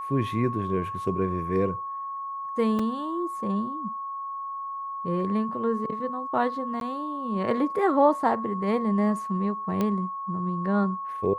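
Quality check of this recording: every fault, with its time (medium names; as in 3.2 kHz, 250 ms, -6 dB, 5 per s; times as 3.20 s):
whine 1.1 kHz -31 dBFS
2.79 s: dropout 4.2 ms
6.80–6.81 s: dropout 12 ms
9.81 s: pop -14 dBFS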